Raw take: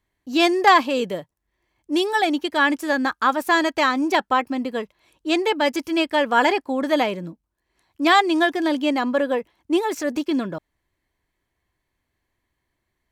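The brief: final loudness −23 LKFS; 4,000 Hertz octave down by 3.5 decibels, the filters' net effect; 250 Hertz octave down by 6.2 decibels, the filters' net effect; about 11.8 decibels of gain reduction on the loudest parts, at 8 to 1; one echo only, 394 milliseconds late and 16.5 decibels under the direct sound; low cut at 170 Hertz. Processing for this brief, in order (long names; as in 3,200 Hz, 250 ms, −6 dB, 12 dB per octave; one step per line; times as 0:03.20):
high-pass filter 170 Hz
parametric band 250 Hz −8 dB
parametric band 4,000 Hz −4.5 dB
downward compressor 8 to 1, threshold −22 dBFS
single-tap delay 394 ms −16.5 dB
level +5 dB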